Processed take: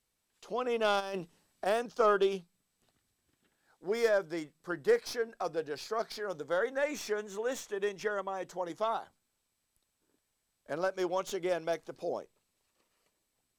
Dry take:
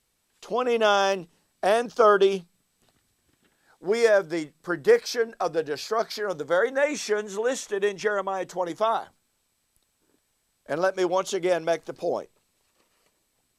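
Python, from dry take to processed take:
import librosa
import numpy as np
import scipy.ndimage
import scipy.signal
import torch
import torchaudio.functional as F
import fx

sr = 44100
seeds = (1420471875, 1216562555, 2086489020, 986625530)

y = fx.tracing_dist(x, sr, depth_ms=0.041)
y = fx.over_compress(y, sr, threshold_db=-29.0, ratio=-1.0, at=(0.99, 1.65), fade=0.02)
y = F.gain(torch.from_numpy(y), -8.5).numpy()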